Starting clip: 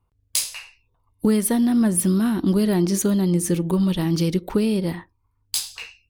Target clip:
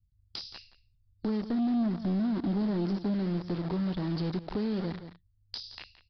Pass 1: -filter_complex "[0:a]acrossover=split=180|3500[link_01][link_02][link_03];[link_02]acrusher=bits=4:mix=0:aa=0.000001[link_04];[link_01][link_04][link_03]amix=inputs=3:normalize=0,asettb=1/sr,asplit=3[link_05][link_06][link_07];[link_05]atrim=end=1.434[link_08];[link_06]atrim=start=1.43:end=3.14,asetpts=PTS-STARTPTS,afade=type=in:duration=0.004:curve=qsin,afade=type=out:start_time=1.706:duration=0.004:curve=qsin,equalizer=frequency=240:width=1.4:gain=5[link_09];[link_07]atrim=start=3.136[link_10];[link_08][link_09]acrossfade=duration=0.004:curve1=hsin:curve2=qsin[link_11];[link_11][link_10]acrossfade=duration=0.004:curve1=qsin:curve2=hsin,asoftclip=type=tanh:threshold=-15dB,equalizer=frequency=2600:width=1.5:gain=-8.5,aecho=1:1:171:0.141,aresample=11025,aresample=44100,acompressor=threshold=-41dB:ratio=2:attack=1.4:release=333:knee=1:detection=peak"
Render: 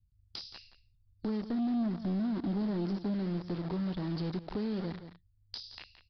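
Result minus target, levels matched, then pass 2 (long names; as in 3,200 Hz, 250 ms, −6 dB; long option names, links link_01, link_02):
downward compressor: peak gain reduction +3 dB
-filter_complex "[0:a]acrossover=split=180|3500[link_01][link_02][link_03];[link_02]acrusher=bits=4:mix=0:aa=0.000001[link_04];[link_01][link_04][link_03]amix=inputs=3:normalize=0,asettb=1/sr,asplit=3[link_05][link_06][link_07];[link_05]atrim=end=1.434[link_08];[link_06]atrim=start=1.43:end=3.14,asetpts=PTS-STARTPTS,afade=type=in:duration=0.004:curve=qsin,afade=type=out:start_time=1.706:duration=0.004:curve=qsin,equalizer=frequency=240:width=1.4:gain=5[link_09];[link_07]atrim=start=3.136[link_10];[link_08][link_09]acrossfade=duration=0.004:curve1=hsin:curve2=qsin[link_11];[link_11][link_10]acrossfade=duration=0.004:curve1=qsin:curve2=hsin,asoftclip=type=tanh:threshold=-15dB,equalizer=frequency=2600:width=1.5:gain=-8.5,aecho=1:1:171:0.141,aresample=11025,aresample=44100,acompressor=threshold=-34.5dB:ratio=2:attack=1.4:release=333:knee=1:detection=peak"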